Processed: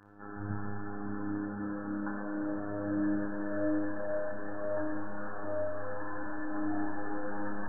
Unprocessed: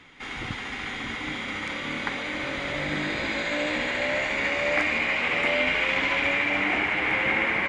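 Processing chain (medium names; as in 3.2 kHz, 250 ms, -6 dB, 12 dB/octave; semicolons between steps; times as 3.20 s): in parallel at -2 dB: gain riding within 4 dB; on the sum: robot voice 102 Hz; hard clipper -19 dBFS, distortion -5 dB; brick-wall FIR low-pass 1.8 kHz; flutter echo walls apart 5 m, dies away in 0.35 s; on a send at -3 dB: reverberation RT60 1.6 s, pre-delay 30 ms; on the sum: trim -9 dB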